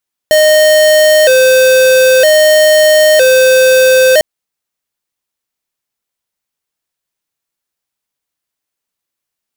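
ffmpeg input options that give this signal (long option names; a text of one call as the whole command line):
ffmpeg -f lavfi -i "aevalsrc='0.473*(2*lt(mod((567*t+50/0.52*(0.5-abs(mod(0.52*t,1)-0.5))),1),0.5)-1)':duration=3.9:sample_rate=44100" out.wav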